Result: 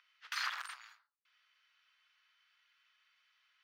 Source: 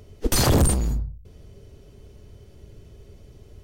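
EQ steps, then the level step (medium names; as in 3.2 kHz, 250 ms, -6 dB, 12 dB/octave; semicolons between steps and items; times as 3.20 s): steep high-pass 1.3 kHz 36 dB/octave; dynamic bell 3.3 kHz, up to -4 dB, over -40 dBFS, Q 1.1; distance through air 300 m; -1.0 dB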